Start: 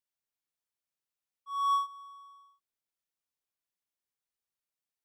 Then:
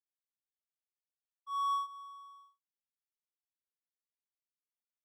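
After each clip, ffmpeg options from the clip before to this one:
-af "agate=range=0.0224:threshold=0.00141:ratio=3:detection=peak,acompressor=threshold=0.0251:ratio=2.5"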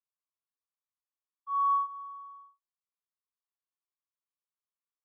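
-af "bandpass=f=1100:t=q:w=6.3:csg=0,volume=2.11"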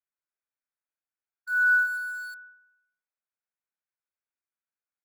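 -filter_complex "[0:a]aecho=1:1:125|250|375|500:0.141|0.0706|0.0353|0.0177,lowpass=f=2200:t=q:w=0.5098,lowpass=f=2200:t=q:w=0.6013,lowpass=f=2200:t=q:w=0.9,lowpass=f=2200:t=q:w=2.563,afreqshift=-2600,asplit=2[s0][s1];[s1]acrusher=bits=6:mix=0:aa=0.000001,volume=0.398[s2];[s0][s2]amix=inputs=2:normalize=0,volume=1.19"

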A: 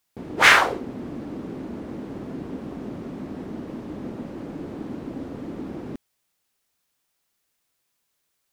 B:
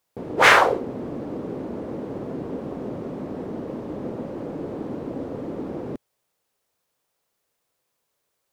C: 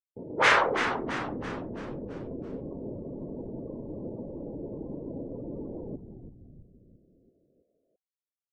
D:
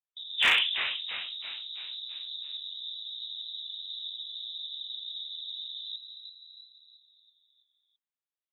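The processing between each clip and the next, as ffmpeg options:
-af "equalizer=f=125:t=o:w=1:g=5,equalizer=f=500:t=o:w=1:g=10,equalizer=f=1000:t=o:w=1:g=4,volume=0.75"
-filter_complex "[0:a]bandreject=f=740:w=12,afftdn=nr=29:nf=-35,asplit=2[s0][s1];[s1]asplit=6[s2][s3][s4][s5][s6][s7];[s2]adelay=333,afreqshift=-130,volume=0.398[s8];[s3]adelay=666,afreqshift=-260,volume=0.207[s9];[s4]adelay=999,afreqshift=-390,volume=0.107[s10];[s5]adelay=1332,afreqshift=-520,volume=0.0562[s11];[s6]adelay=1665,afreqshift=-650,volume=0.0292[s12];[s7]adelay=1998,afreqshift=-780,volume=0.0151[s13];[s8][s9][s10][s11][s12][s13]amix=inputs=6:normalize=0[s14];[s0][s14]amix=inputs=2:normalize=0,volume=0.447"
-af "lowpass=f=3400:t=q:w=0.5098,lowpass=f=3400:t=q:w=0.6013,lowpass=f=3400:t=q:w=0.9,lowpass=f=3400:t=q:w=2.563,afreqshift=-4000,volume=4.73,asoftclip=hard,volume=0.211,adynamicequalizer=threshold=0.01:dfrequency=1600:dqfactor=0.7:tfrequency=1600:tqfactor=0.7:attack=5:release=100:ratio=0.375:range=2:mode=cutabove:tftype=highshelf,volume=0.891"

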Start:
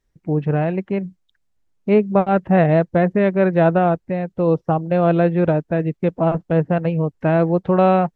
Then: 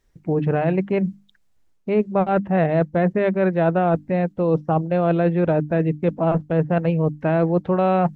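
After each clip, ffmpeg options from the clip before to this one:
-af "bandreject=f=50:t=h:w=6,bandreject=f=100:t=h:w=6,bandreject=f=150:t=h:w=6,bandreject=f=200:t=h:w=6,bandreject=f=250:t=h:w=6,bandreject=f=300:t=h:w=6,areverse,acompressor=threshold=0.0631:ratio=4,areverse,volume=2.11"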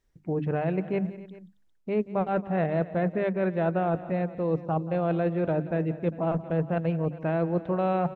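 -af "aecho=1:1:179|272|401:0.15|0.112|0.106,volume=0.422"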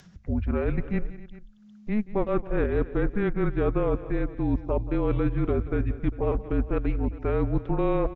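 -af "aresample=16000,aresample=44100,afreqshift=-210,acompressor=mode=upward:threshold=0.01:ratio=2.5,volume=1.26"

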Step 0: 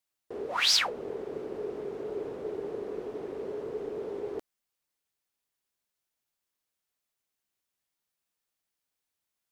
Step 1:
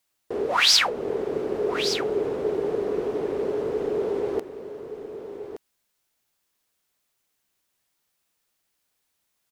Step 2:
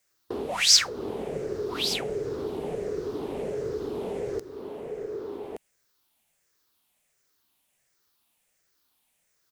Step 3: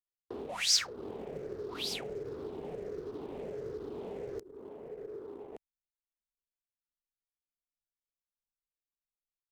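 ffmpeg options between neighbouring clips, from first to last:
-filter_complex "[0:a]asplit=2[s0][s1];[s1]alimiter=limit=0.0631:level=0:latency=1:release=400,volume=0.944[s2];[s0][s2]amix=inputs=2:normalize=0,aecho=1:1:1170:0.299,volume=1.58"
-filter_complex "[0:a]afftfilt=real='re*pow(10,8/40*sin(2*PI*(0.53*log(max(b,1)*sr/1024/100)/log(2)-(-1.4)*(pts-256)/sr)))':imag='im*pow(10,8/40*sin(2*PI*(0.53*log(max(b,1)*sr/1024/100)/log(2)-(-1.4)*(pts-256)/sr)))':win_size=1024:overlap=0.75,acrossover=split=180|3700[s0][s1][s2];[s1]acompressor=threshold=0.0224:ratio=5[s3];[s0][s3][s2]amix=inputs=3:normalize=0,volume=1.26"
-filter_complex "[0:a]anlmdn=0.158,acrossover=split=230|2400[s0][s1][s2];[s0]acrusher=bits=5:mode=log:mix=0:aa=0.000001[s3];[s3][s1][s2]amix=inputs=3:normalize=0,volume=0.355"

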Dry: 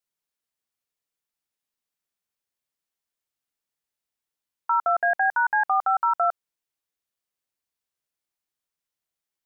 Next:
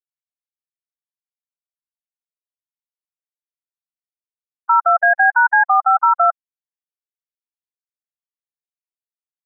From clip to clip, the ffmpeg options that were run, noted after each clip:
-af "afftfilt=real='re*gte(hypot(re,im),0.112)':imag='im*gte(hypot(re,im),0.112)':win_size=1024:overlap=0.75,tiltshelf=f=970:g=-4.5,volume=2.51"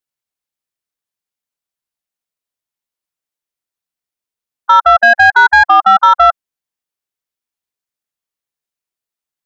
-af "acontrast=85,volume=1.19"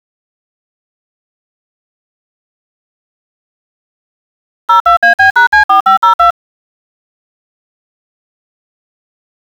-af "aeval=exprs='val(0)*gte(abs(val(0)),0.0473)':c=same"

